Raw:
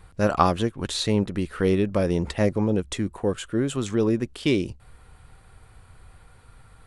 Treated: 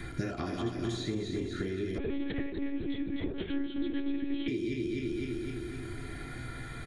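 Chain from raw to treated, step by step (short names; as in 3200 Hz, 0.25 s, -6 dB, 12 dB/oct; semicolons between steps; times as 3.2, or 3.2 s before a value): regenerating reverse delay 0.128 s, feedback 64%, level -3.5 dB; bell 1200 Hz -10 dB 0.53 oct; notches 50/100 Hz; comb 2.9 ms, depth 41%; compressor, threshold -34 dBFS, peak gain reduction 17.5 dB; resonator 120 Hz, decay 0.69 s, harmonics odd, mix 40%; reverb RT60 0.20 s, pre-delay 3 ms, DRR 3.5 dB; 1.98–4.48 monotone LPC vocoder at 8 kHz 280 Hz; three-band squash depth 70%; gain -1 dB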